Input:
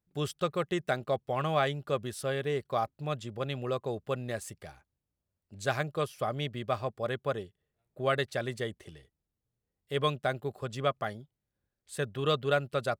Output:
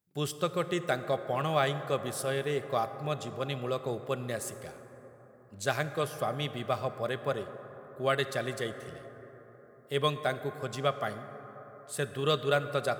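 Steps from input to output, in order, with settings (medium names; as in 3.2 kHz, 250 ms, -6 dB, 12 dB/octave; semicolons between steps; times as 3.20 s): high-pass 97 Hz; treble shelf 6.9 kHz +8 dB; plate-style reverb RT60 4.5 s, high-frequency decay 0.3×, DRR 10 dB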